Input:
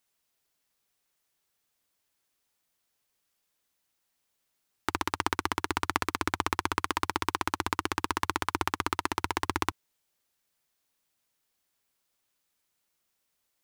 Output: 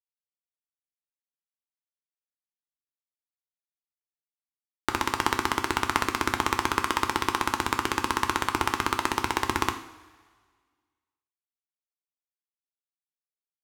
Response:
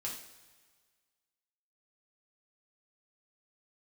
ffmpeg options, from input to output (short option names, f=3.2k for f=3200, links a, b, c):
-filter_complex "[0:a]aeval=exprs='sgn(val(0))*max(abs(val(0))-0.00501,0)':c=same,asplit=2[a][b];[1:a]atrim=start_sample=2205[c];[b][c]afir=irnorm=-1:irlink=0,volume=-1dB[d];[a][d]amix=inputs=2:normalize=0"